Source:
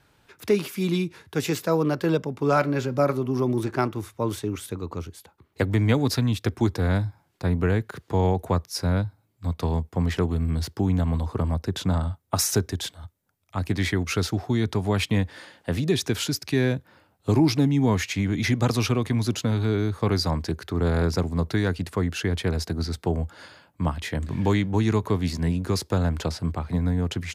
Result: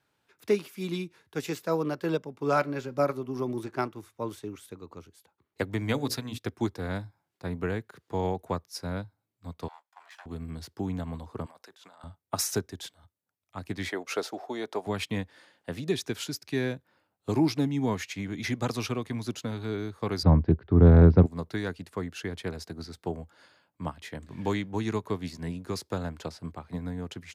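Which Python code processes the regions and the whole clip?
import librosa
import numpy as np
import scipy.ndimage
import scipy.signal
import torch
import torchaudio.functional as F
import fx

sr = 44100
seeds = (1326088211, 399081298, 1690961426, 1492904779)

y = fx.chain(x, sr, fx.high_shelf(hz=5900.0, db=4.5),
    fx.hum_notches(base_hz=60, count=9), at=(5.8, 6.38))
y = fx.chain(y, sr, fx.lower_of_two(delay_ms=1.2),
    fx.highpass(hz=990.0, slope=24),
    fx.tilt_eq(slope=-2.0), at=(9.68, 10.26))
y = fx.chain(y, sr, fx.highpass(hz=740.0, slope=12),
    fx.over_compress(threshold_db=-41.0, ratio=-1.0), at=(11.46, 12.04))
y = fx.chain(y, sr, fx.highpass(hz=360.0, slope=12),
    fx.peak_eq(hz=620.0, db=10.0, octaves=1.3), at=(13.89, 14.87))
y = fx.chain(y, sr, fx.lowpass(hz=3800.0, slope=24),
    fx.tilt_eq(slope=-4.5), at=(20.23, 21.26))
y = fx.highpass(y, sr, hz=180.0, slope=6)
y = fx.upward_expand(y, sr, threshold_db=-37.0, expansion=1.5)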